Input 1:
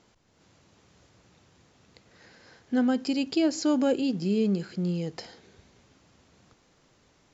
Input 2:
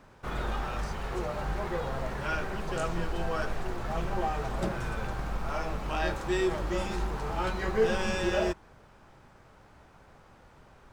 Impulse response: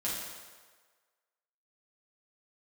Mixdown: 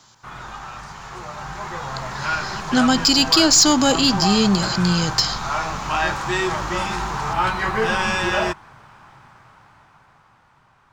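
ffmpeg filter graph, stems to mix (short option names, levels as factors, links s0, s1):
-filter_complex "[0:a]aexciter=amount=4.1:drive=6.9:freq=3300,volume=0.668[s0];[1:a]volume=0.398[s1];[s0][s1]amix=inputs=2:normalize=0,equalizer=f=125:t=o:w=1:g=11,equalizer=f=500:t=o:w=1:g=-8,equalizer=f=1000:t=o:w=1:g=6,dynaudnorm=f=210:g=17:m=3.98,asplit=2[s2][s3];[s3]highpass=f=720:p=1,volume=4.47,asoftclip=type=tanh:threshold=0.794[s4];[s2][s4]amix=inputs=2:normalize=0,lowpass=f=5800:p=1,volume=0.501"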